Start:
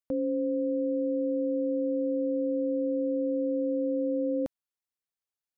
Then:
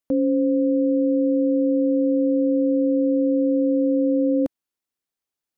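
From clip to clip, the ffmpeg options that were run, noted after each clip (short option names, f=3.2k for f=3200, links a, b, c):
-af "equalizer=f=290:t=o:w=1.2:g=6,volume=4.5dB"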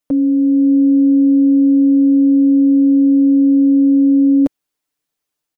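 -af "aecho=1:1:6.7:0.85,dynaudnorm=f=360:g=3:m=3dB,volume=3dB"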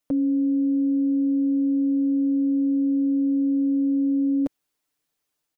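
-af "alimiter=limit=-18dB:level=0:latency=1:release=38"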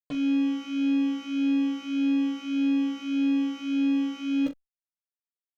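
-filter_complex "[0:a]acrusher=bits=4:mix=0:aa=0.5,aecho=1:1:14|41|62:0.668|0.398|0.158,asplit=2[a][b];[b]adelay=2.2,afreqshift=-1.7[c];[a][c]amix=inputs=2:normalize=1,volume=-4dB"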